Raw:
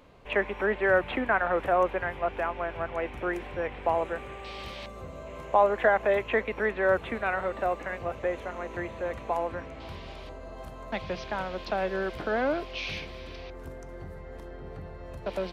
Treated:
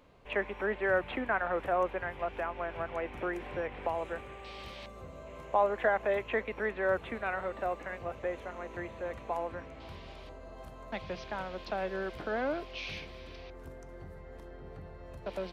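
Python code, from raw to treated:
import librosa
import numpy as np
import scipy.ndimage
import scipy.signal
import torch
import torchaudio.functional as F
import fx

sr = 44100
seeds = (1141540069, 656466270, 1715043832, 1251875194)

y = fx.band_squash(x, sr, depth_pct=70, at=(2.19, 4.21))
y = y * 10.0 ** (-5.5 / 20.0)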